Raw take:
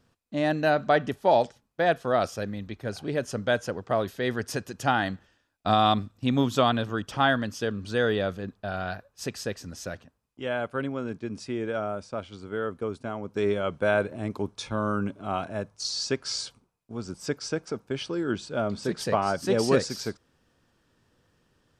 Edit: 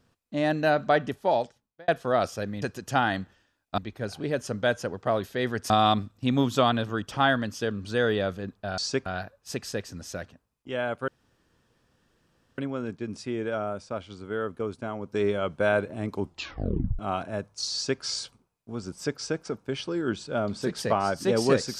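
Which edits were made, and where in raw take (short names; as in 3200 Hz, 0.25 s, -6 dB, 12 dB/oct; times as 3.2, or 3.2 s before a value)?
0.7–1.88 fade out equal-power
4.54–5.7 move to 2.62
10.8 insert room tone 1.50 s
14.42 tape stop 0.79 s
15.95–16.23 copy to 8.78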